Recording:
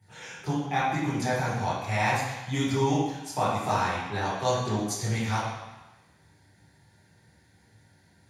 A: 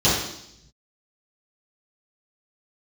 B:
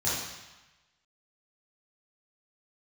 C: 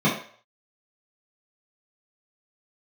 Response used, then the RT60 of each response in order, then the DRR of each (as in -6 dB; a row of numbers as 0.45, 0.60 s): B; 0.75, 1.1, 0.50 s; -11.0, -10.0, -9.0 dB